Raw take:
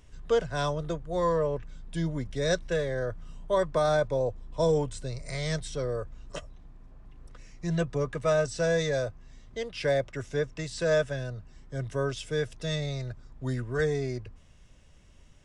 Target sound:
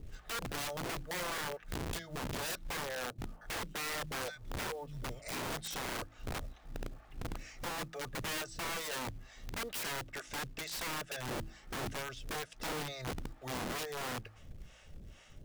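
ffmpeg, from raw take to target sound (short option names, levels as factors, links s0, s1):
-filter_complex "[0:a]acompressor=threshold=0.0141:ratio=12,highshelf=f=5900:g=-8.5,asettb=1/sr,asplit=3[s0][s1][s2];[s0]atrim=end=3.064[s3];[s1]atrim=start=3.06:end=5.22,asetpts=PTS-STARTPTS,afade=t=in:d=0.004:c=qsin,afade=t=out:st=2.156:d=0.004:c=qsin,acrossover=split=150|1600[s4][s5][s6];[s4]adelay=120[s7];[s6]adelay=350[s8];[s7][s5][s8]amix=inputs=3:normalize=0,atrim=end_sample=95256[s9];[s2]atrim=start=5.216[s10];[s3][s9]acrossfade=d=0.004:c1=hsin:c2=qsin[s11];[s11][s10]acrossfade=d=0.004:c1=qsin:c2=hsin,acrossover=split=570[s12][s13];[s12]aeval=exprs='val(0)*(1-1/2+1/2*cos(2*PI*2.2*n/s))':c=same[s14];[s13]aeval=exprs='val(0)*(1-1/2-1/2*cos(2*PI*2.2*n/s))':c=same[s15];[s14][s15]amix=inputs=2:normalize=0,asuperstop=centerf=1000:order=8:qfactor=7.7,aeval=exprs='(mod(141*val(0)+1,2)-1)/141':c=same,bandreject=f=54.25:t=h:w=4,bandreject=f=108.5:t=h:w=4,bandreject=f=162.75:t=h:w=4,bandreject=f=217:t=h:w=4,bandreject=f=271.25:t=h:w=4,bandreject=f=325.5:t=h:w=4,acrusher=bits=6:mode=log:mix=0:aa=0.000001,volume=2.99"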